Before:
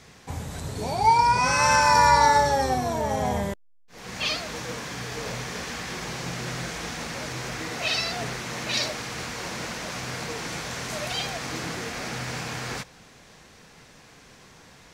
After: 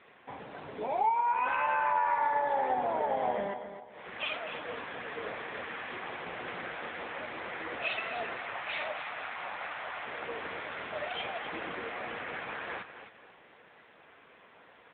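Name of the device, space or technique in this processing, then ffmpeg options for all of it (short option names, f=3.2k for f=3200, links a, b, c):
voicemail: -filter_complex "[0:a]asettb=1/sr,asplit=3[a][b][c];[a]atrim=end=8.394[d];[b]atrim=start=8.39:end=10.05,asetpts=PTS-STARTPTS,afade=t=in:d=0.004:c=qsin,afade=t=out:st=1.656:d=0.004:c=qsin,lowshelf=f=510:t=q:w=1.5:g=-9[e];[c]atrim=start=10.046[f];[d][e]acrossfade=d=0.004:c1=hsin:c2=qsin[g];[g][f]acrossfade=d=0.004:c1=qsin:c2=hsin,highpass=360,lowpass=2.9k,aecho=1:1:260|520|780|1040:0.299|0.0985|0.0325|0.0107,acompressor=threshold=-23dB:ratio=8,volume=-1.5dB" -ar 8000 -c:a libopencore_amrnb -b:a 7950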